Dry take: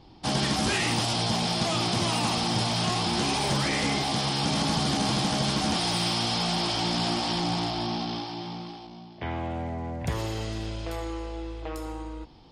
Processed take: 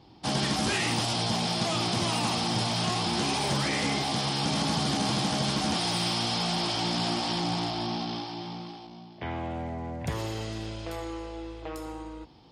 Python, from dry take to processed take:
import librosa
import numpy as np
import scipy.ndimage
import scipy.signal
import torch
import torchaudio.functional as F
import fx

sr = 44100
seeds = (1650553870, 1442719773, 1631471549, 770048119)

y = scipy.signal.sosfilt(scipy.signal.butter(2, 71.0, 'highpass', fs=sr, output='sos'), x)
y = y * 10.0 ** (-1.5 / 20.0)